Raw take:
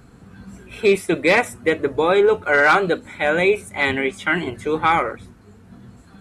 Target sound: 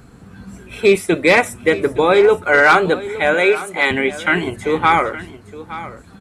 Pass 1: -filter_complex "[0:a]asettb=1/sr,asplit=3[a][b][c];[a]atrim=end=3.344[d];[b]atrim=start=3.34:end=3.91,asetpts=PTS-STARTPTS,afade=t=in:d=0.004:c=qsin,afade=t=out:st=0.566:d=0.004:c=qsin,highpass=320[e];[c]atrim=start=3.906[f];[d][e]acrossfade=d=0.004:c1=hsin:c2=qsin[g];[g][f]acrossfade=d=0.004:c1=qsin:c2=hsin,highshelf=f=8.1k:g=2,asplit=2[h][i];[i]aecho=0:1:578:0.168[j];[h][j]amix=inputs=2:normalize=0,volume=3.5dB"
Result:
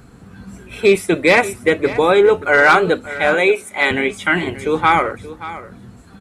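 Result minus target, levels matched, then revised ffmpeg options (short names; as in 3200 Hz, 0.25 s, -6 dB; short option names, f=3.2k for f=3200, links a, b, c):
echo 0.288 s early
-filter_complex "[0:a]asettb=1/sr,asplit=3[a][b][c];[a]atrim=end=3.344[d];[b]atrim=start=3.34:end=3.91,asetpts=PTS-STARTPTS,afade=t=in:d=0.004:c=qsin,afade=t=out:st=0.566:d=0.004:c=qsin,highpass=320[e];[c]atrim=start=3.906[f];[d][e]acrossfade=d=0.004:c1=hsin:c2=qsin[g];[g][f]acrossfade=d=0.004:c1=qsin:c2=hsin,highshelf=f=8.1k:g=2,asplit=2[h][i];[i]aecho=0:1:866:0.168[j];[h][j]amix=inputs=2:normalize=0,volume=3.5dB"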